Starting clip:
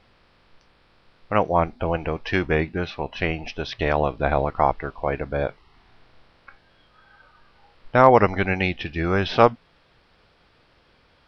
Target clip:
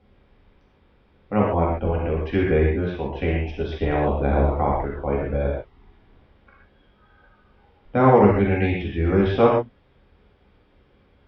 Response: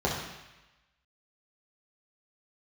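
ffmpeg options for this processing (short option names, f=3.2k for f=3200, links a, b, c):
-filter_complex "[1:a]atrim=start_sample=2205,atrim=end_sample=3528,asetrate=22932,aresample=44100[a];[0:a][a]afir=irnorm=-1:irlink=0,volume=-16.5dB"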